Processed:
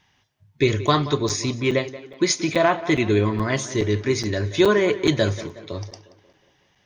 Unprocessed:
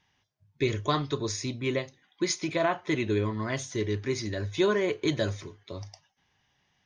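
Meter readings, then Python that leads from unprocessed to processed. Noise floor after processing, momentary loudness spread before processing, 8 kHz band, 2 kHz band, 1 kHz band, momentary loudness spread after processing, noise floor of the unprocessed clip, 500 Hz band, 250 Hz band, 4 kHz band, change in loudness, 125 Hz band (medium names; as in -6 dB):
-64 dBFS, 15 LU, +8.0 dB, +8.0 dB, +8.0 dB, 14 LU, -73 dBFS, +8.0 dB, +8.0 dB, +8.0 dB, +8.0 dB, +8.0 dB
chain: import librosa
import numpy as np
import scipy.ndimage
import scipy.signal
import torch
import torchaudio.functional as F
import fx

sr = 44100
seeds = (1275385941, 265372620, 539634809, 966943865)

y = fx.echo_tape(x, sr, ms=181, feedback_pct=54, wet_db=-14.5, lp_hz=3200.0, drive_db=8.0, wow_cents=29)
y = fx.buffer_crackle(y, sr, first_s=0.87, period_s=0.42, block=256, kind='zero')
y = y * 10.0 ** (8.0 / 20.0)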